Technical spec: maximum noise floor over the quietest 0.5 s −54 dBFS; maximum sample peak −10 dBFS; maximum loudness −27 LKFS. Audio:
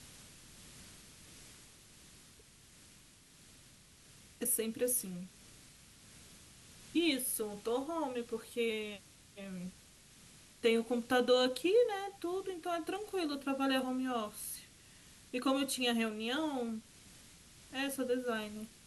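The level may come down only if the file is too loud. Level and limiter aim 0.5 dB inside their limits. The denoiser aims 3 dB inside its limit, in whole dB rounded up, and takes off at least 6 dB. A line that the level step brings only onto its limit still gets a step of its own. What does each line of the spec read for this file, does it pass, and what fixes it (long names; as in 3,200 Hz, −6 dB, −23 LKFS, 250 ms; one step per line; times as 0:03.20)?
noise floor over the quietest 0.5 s −61 dBFS: in spec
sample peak −19.0 dBFS: in spec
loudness −35.5 LKFS: in spec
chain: no processing needed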